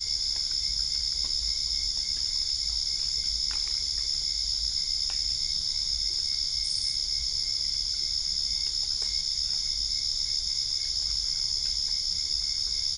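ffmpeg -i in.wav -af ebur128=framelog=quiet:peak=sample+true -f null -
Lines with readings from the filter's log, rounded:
Integrated loudness:
  I:         -25.8 LUFS
  Threshold: -35.8 LUFS
Loudness range:
  LRA:         0.1 LU
  Threshold: -45.8 LUFS
  LRA low:   -25.9 LUFS
  LRA high:  -25.7 LUFS
Sample peak:
  Peak:      -15.6 dBFS
True peak:
  Peak:      -15.6 dBFS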